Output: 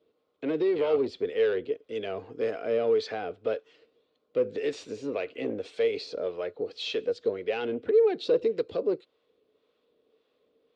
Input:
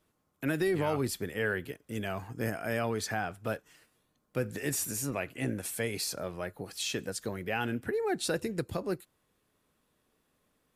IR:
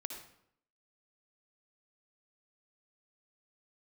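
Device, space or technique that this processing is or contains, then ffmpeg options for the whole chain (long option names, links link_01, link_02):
guitar amplifier with harmonic tremolo: -filter_complex "[0:a]acrossover=split=640[link_01][link_02];[link_01]aeval=exprs='val(0)*(1-0.5/2+0.5/2*cos(2*PI*1.8*n/s))':channel_layout=same[link_03];[link_02]aeval=exprs='val(0)*(1-0.5/2-0.5/2*cos(2*PI*1.8*n/s))':channel_layout=same[link_04];[link_03][link_04]amix=inputs=2:normalize=0,asoftclip=type=tanh:threshold=-27dB,highpass=110,equalizer=frequency=130:width_type=q:width=4:gain=-7,equalizer=frequency=190:width_type=q:width=4:gain=-4,equalizer=frequency=280:width_type=q:width=4:gain=3,equalizer=frequency=450:width_type=q:width=4:gain=10,equalizer=frequency=880:width_type=q:width=4:gain=-4,equalizer=frequency=1700:width_type=q:width=4:gain=-6,lowpass=frequency=3800:width=0.5412,lowpass=frequency=3800:width=1.3066,equalizer=frequency=125:width_type=o:width=1:gain=-4,equalizer=frequency=500:width_type=o:width=1:gain=8,equalizer=frequency=4000:width_type=o:width=1:gain=7,equalizer=frequency=8000:width_type=o:width=1:gain=7"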